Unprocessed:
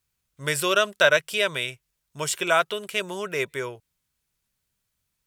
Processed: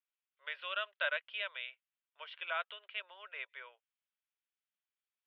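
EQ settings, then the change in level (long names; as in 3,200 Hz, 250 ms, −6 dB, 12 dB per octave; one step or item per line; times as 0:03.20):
elliptic band-pass filter 530–3,300 Hz, stop band 40 dB
high-frequency loss of the air 360 metres
first difference
+1.5 dB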